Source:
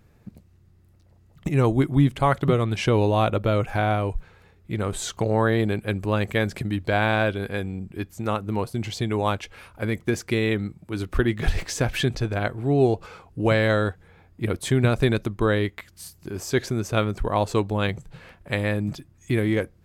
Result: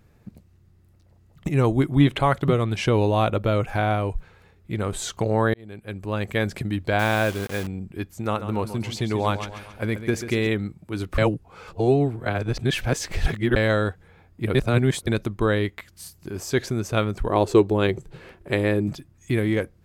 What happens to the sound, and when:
2.00–2.21 s: time-frequency box 280–4200 Hz +9 dB
5.54–6.46 s: fade in
6.99–7.67 s: word length cut 6-bit, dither none
8.23–10.47 s: feedback delay 137 ms, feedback 47%, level -11 dB
11.18–13.56 s: reverse
14.55–15.07 s: reverse
17.28–18.88 s: peaking EQ 370 Hz +13.5 dB 0.51 oct

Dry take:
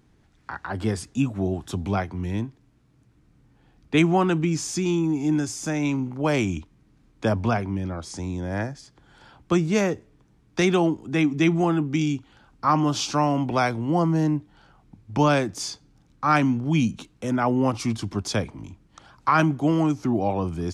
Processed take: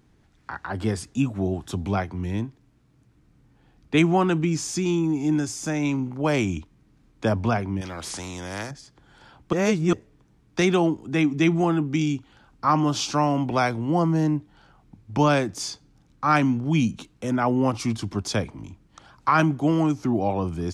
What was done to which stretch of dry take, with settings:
7.81–8.71 s: spectrum-flattening compressor 2:1
9.53–9.93 s: reverse

